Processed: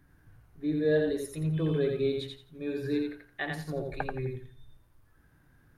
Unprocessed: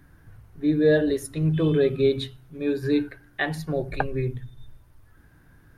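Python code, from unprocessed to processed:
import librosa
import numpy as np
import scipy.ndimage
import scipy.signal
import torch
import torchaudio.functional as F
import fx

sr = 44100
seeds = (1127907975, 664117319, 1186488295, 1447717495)

y = fx.echo_thinned(x, sr, ms=85, feedback_pct=24, hz=200.0, wet_db=-3.5)
y = y * librosa.db_to_amplitude(-8.5)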